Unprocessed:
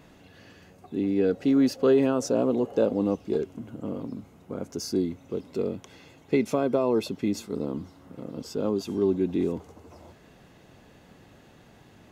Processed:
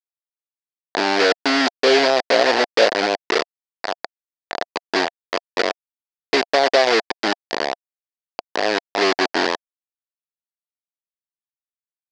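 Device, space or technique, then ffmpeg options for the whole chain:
hand-held game console: -af "acrusher=bits=3:mix=0:aa=0.000001,highpass=480,equalizer=frequency=700:width_type=q:width=4:gain=8,equalizer=frequency=1200:width_type=q:width=4:gain=-4,equalizer=frequency=1800:width_type=q:width=4:gain=5,equalizer=frequency=4700:width_type=q:width=4:gain=8,lowpass=frequency=5400:width=0.5412,lowpass=frequency=5400:width=1.3066,volume=8dB"

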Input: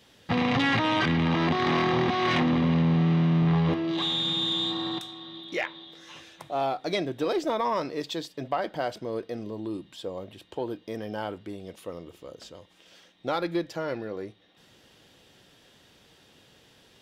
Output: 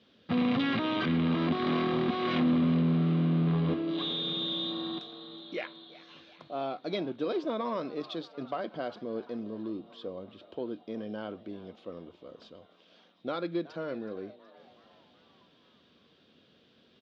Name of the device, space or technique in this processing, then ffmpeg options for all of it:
frequency-shifting delay pedal into a guitar cabinet: -filter_complex "[0:a]asplit=6[link_01][link_02][link_03][link_04][link_05][link_06];[link_02]adelay=372,afreqshift=130,volume=-18.5dB[link_07];[link_03]adelay=744,afreqshift=260,volume=-23.1dB[link_08];[link_04]adelay=1116,afreqshift=390,volume=-27.7dB[link_09];[link_05]adelay=1488,afreqshift=520,volume=-32.2dB[link_10];[link_06]adelay=1860,afreqshift=650,volume=-36.8dB[link_11];[link_01][link_07][link_08][link_09][link_10][link_11]amix=inputs=6:normalize=0,highpass=95,equalizer=frequency=120:width_type=q:width=4:gain=-7,equalizer=frequency=230:width_type=q:width=4:gain=6,equalizer=frequency=860:width_type=q:width=4:gain=-10,equalizer=frequency=1900:width_type=q:width=4:gain=-8,equalizer=frequency=2700:width_type=q:width=4:gain=-3,lowpass=frequency=4100:width=0.5412,lowpass=frequency=4100:width=1.3066,volume=-4dB"

